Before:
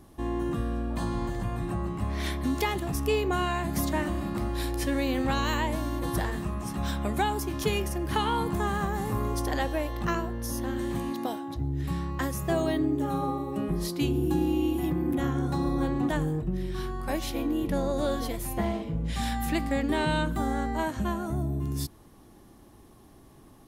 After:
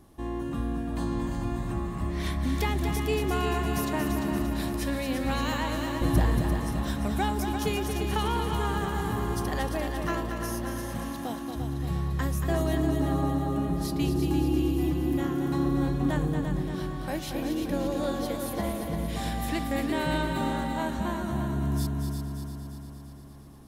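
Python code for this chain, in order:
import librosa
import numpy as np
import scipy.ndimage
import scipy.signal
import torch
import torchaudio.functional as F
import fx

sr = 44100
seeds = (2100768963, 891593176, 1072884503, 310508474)

y = fx.low_shelf(x, sr, hz=420.0, db=11.0, at=(6.01, 6.41))
y = fx.echo_heads(y, sr, ms=115, heads='second and third', feedback_pct=63, wet_db=-7.0)
y = F.gain(torch.from_numpy(y), -2.5).numpy()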